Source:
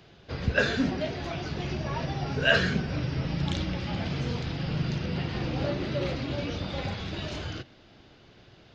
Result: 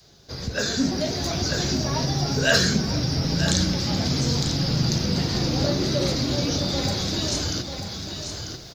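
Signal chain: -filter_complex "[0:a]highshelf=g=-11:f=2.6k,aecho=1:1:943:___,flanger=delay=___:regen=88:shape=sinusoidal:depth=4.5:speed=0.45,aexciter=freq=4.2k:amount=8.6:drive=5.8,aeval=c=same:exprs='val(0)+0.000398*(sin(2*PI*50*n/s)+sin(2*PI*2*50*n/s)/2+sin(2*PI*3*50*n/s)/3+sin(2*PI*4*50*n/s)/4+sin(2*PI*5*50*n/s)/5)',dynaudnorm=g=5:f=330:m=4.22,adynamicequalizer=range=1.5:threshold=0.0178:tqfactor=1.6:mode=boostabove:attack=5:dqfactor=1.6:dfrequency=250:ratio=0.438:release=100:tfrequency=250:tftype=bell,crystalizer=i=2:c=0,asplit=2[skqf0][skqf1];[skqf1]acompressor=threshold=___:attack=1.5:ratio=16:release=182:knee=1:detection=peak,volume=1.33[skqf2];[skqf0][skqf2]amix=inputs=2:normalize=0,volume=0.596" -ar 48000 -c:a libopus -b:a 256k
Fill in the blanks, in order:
0.282, 7, 0.0316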